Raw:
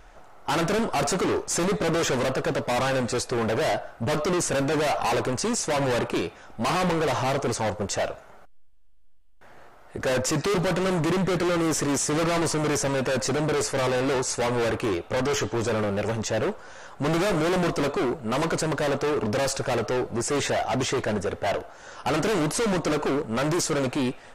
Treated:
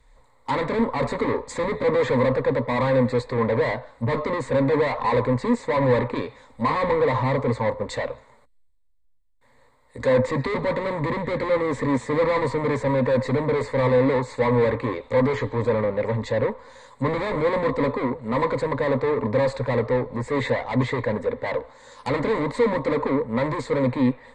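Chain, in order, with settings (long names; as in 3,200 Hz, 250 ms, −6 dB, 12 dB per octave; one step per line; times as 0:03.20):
EQ curve with evenly spaced ripples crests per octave 1, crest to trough 15 dB
treble cut that deepens with the level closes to 2,300 Hz, closed at −21 dBFS
multiband upward and downward expander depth 40%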